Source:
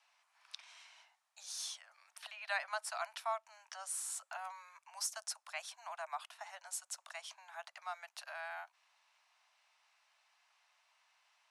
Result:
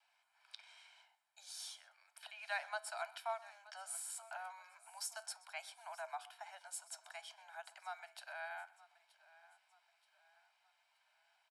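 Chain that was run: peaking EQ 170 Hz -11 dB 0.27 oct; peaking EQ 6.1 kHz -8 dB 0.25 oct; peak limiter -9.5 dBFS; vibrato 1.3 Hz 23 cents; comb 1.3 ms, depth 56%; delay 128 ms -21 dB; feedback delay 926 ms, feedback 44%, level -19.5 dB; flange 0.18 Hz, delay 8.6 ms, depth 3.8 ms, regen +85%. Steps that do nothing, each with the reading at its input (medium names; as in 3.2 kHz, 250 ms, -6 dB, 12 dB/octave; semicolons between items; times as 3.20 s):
peaking EQ 170 Hz: input has nothing below 510 Hz; peak limiter -9.5 dBFS: peak at its input -24.0 dBFS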